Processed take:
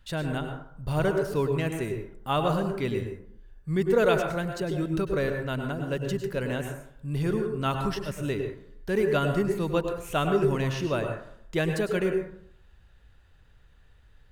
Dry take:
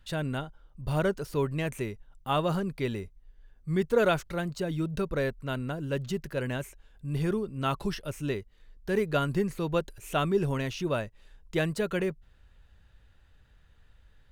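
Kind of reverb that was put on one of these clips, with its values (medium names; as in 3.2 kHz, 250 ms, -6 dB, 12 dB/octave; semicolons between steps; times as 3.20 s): plate-style reverb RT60 0.64 s, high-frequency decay 0.4×, pre-delay 90 ms, DRR 4.5 dB; trim +1 dB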